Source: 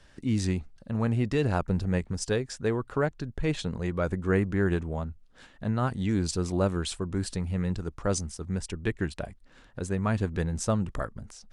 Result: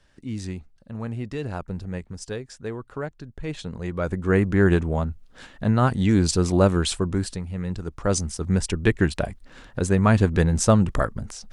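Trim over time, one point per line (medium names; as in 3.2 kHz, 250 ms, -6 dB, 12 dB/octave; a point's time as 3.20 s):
3.37 s -4.5 dB
4.65 s +8 dB
7.07 s +8 dB
7.47 s -2 dB
8.51 s +9.5 dB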